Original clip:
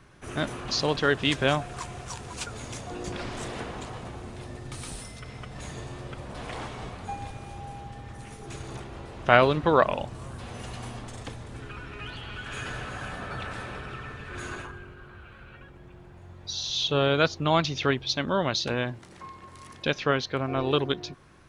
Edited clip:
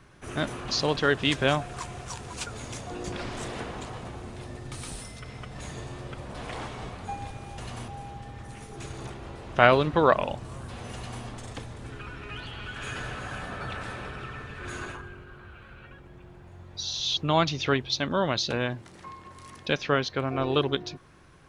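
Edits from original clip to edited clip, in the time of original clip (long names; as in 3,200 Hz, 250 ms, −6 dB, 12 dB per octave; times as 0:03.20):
0:10.64–0:10.94: duplicate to 0:07.58
0:16.87–0:17.34: remove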